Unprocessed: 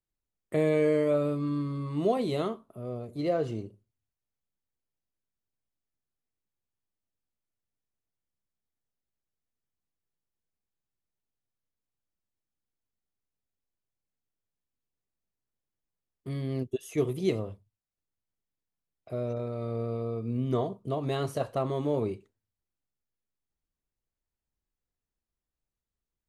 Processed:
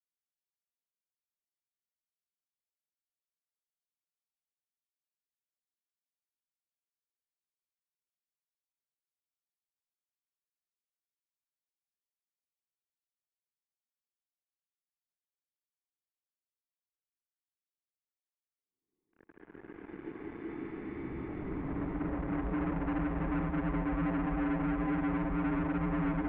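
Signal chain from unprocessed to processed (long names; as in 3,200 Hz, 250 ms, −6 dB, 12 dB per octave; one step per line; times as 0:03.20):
extreme stretch with random phases 39×, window 0.10 s, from 0:18.55
leveller curve on the samples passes 5
single-sideband voice off tune −320 Hz 310–2,700 Hz
level −8 dB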